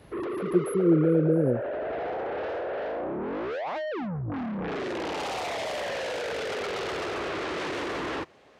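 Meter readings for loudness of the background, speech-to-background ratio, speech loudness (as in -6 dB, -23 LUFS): -32.0 LUFS, 7.5 dB, -24.5 LUFS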